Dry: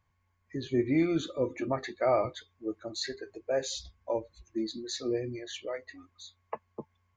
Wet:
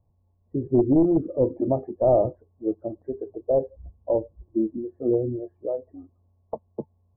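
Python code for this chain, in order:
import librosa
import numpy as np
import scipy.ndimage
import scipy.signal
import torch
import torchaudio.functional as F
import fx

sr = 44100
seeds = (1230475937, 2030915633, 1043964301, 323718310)

y = np.minimum(x, 2.0 * 10.0 ** (-23.0 / 20.0) - x)
y = scipy.signal.sosfilt(scipy.signal.butter(6, 760.0, 'lowpass', fs=sr, output='sos'), y)
y = F.gain(torch.from_numpy(y), 9.0).numpy()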